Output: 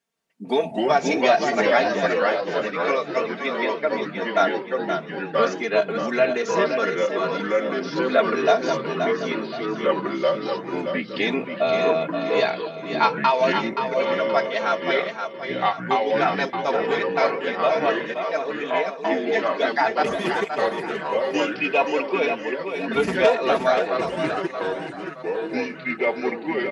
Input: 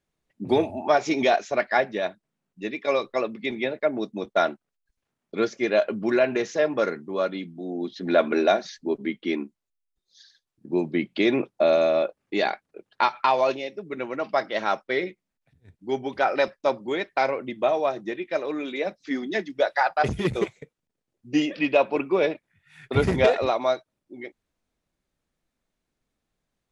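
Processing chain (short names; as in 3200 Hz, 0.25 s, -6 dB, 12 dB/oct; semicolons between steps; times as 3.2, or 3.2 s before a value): HPF 100 Hz; low shelf 330 Hz -10 dB; notch 3800 Hz, Q 18; comb 4.4 ms, depth 96%; feedback echo 0.525 s, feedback 39%, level -7 dB; echoes that change speed 0.158 s, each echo -3 st, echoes 2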